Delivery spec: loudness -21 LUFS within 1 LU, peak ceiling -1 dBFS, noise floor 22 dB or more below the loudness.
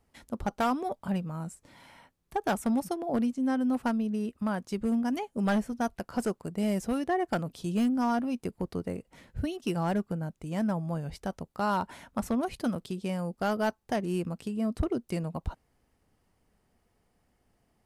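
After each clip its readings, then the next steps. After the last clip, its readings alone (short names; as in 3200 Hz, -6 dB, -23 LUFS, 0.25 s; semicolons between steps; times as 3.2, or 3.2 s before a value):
clipped 0.6%; flat tops at -21.0 dBFS; loudness -31.5 LUFS; peak -21.0 dBFS; loudness target -21.0 LUFS
-> clip repair -21 dBFS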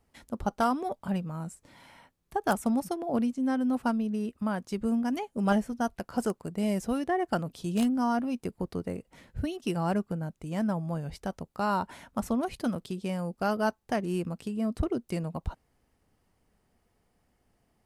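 clipped 0.0%; loudness -31.0 LUFS; peak -12.0 dBFS; loudness target -21.0 LUFS
-> gain +10 dB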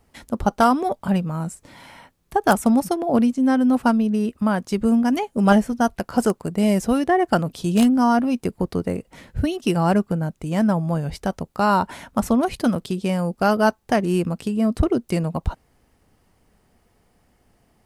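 loudness -21.0 LUFS; peak -2.0 dBFS; noise floor -63 dBFS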